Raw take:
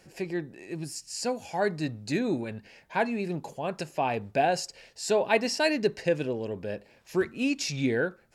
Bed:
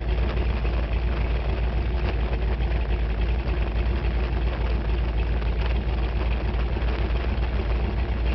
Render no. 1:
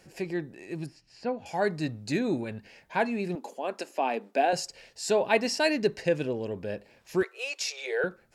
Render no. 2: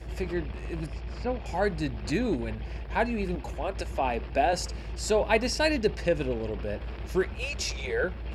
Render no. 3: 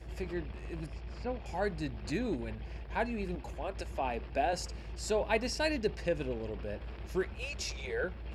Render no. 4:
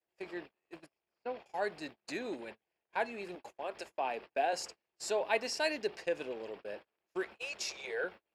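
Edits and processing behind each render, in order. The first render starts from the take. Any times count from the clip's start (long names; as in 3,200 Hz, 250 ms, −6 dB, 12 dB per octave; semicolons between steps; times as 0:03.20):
0:00.86–0:01.46: high-frequency loss of the air 360 metres; 0:03.35–0:04.53: elliptic high-pass filter 230 Hz, stop band 50 dB; 0:07.23–0:08.04: Butterworth high-pass 400 Hz 72 dB per octave
mix in bed −12.5 dB
level −6.5 dB
high-pass filter 420 Hz 12 dB per octave; noise gate −46 dBFS, range −34 dB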